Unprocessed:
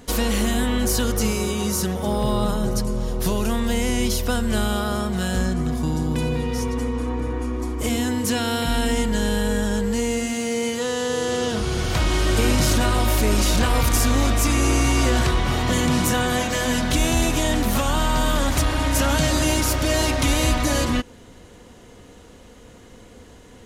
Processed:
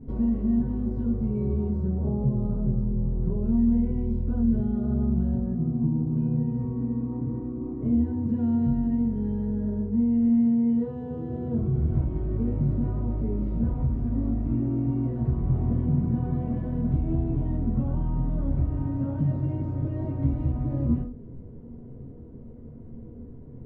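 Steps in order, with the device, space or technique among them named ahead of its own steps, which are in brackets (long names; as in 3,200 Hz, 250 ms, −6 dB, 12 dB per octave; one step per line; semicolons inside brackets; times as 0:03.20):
television next door (downward compressor 4 to 1, threshold −26 dBFS, peak gain reduction 10 dB; low-pass filter 290 Hz 12 dB per octave; convolution reverb RT60 0.35 s, pre-delay 3 ms, DRR −9.5 dB)
level −4 dB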